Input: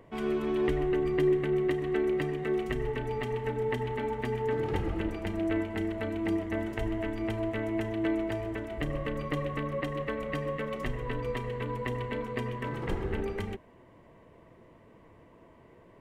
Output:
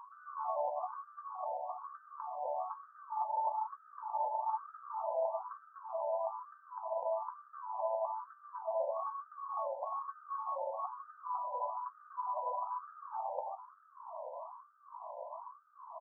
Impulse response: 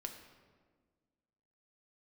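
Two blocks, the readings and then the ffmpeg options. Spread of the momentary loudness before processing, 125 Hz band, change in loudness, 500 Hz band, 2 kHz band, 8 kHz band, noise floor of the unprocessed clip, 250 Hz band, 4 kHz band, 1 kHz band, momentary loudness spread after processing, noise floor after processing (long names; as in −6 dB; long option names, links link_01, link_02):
6 LU, below −40 dB, −8.0 dB, −9.0 dB, below −20 dB, can't be measured, −57 dBFS, below −40 dB, below −35 dB, +4.0 dB, 13 LU, −62 dBFS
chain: -filter_complex "[0:a]afftfilt=real='re*lt(hypot(re,im),0.112)':imag='im*lt(hypot(re,im),0.112)':win_size=1024:overlap=0.75,bandreject=frequency=45.96:width_type=h:width=4,bandreject=frequency=91.92:width_type=h:width=4,bandreject=frequency=137.88:width_type=h:width=4,bandreject=frequency=183.84:width_type=h:width=4,bandreject=frequency=229.8:width_type=h:width=4,bandreject=frequency=275.76:width_type=h:width=4,bandreject=frequency=321.72:width_type=h:width=4,bandreject=frequency=367.68:width_type=h:width=4,bandreject=frequency=413.64:width_type=h:width=4,alimiter=level_in=1.5dB:limit=-24dB:level=0:latency=1:release=464,volume=-1.5dB,acompressor=threshold=-48dB:ratio=3,aeval=exprs='0.02*(cos(1*acos(clip(val(0)/0.02,-1,1)))-cos(1*PI/2))+0.00794*(cos(2*acos(clip(val(0)/0.02,-1,1)))-cos(2*PI/2))':channel_layout=same,asuperstop=centerf=2200:order=8:qfactor=0.67,asplit=2[link_01][link_02];[link_02]adelay=17,volume=-8dB[link_03];[link_01][link_03]amix=inputs=2:normalize=0,asplit=4[link_04][link_05][link_06][link_07];[link_05]adelay=441,afreqshift=110,volume=-19.5dB[link_08];[link_06]adelay=882,afreqshift=220,volume=-28.9dB[link_09];[link_07]adelay=1323,afreqshift=330,volume=-38.2dB[link_10];[link_04][link_08][link_09][link_10]amix=inputs=4:normalize=0,afftfilt=real='re*between(b*sr/1024,710*pow(1700/710,0.5+0.5*sin(2*PI*1.1*pts/sr))/1.41,710*pow(1700/710,0.5+0.5*sin(2*PI*1.1*pts/sr))*1.41)':imag='im*between(b*sr/1024,710*pow(1700/710,0.5+0.5*sin(2*PI*1.1*pts/sr))/1.41,710*pow(1700/710,0.5+0.5*sin(2*PI*1.1*pts/sr))*1.41)':win_size=1024:overlap=0.75,volume=18dB"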